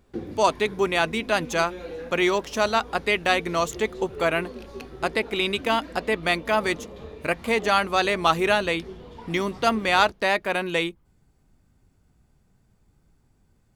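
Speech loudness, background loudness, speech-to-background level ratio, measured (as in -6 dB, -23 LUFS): -24.0 LUFS, -40.5 LUFS, 16.5 dB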